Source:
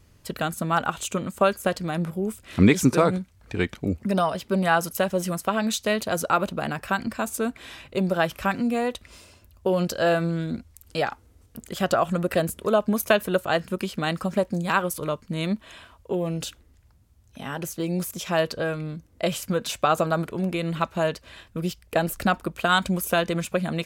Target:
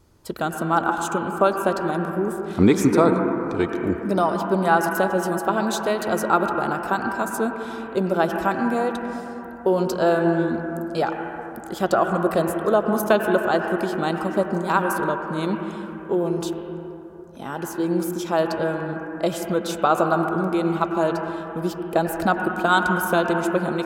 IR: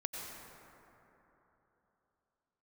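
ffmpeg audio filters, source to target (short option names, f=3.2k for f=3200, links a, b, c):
-filter_complex "[0:a]asplit=2[a][b];[b]highpass=280,equalizer=f=340:t=q:w=4:g=9,equalizer=f=570:t=q:w=4:g=-5,equalizer=f=910:t=q:w=4:g=9,equalizer=f=1.5k:t=q:w=4:g=8,equalizer=f=3k:t=q:w=4:g=5,lowpass=f=3.2k:w=0.5412,lowpass=f=3.2k:w=1.3066[c];[1:a]atrim=start_sample=2205,lowshelf=f=200:g=9.5,highshelf=f=2.3k:g=-9.5[d];[c][d]afir=irnorm=-1:irlink=0,volume=-1.5dB[e];[a][e]amix=inputs=2:normalize=0,volume=-2dB"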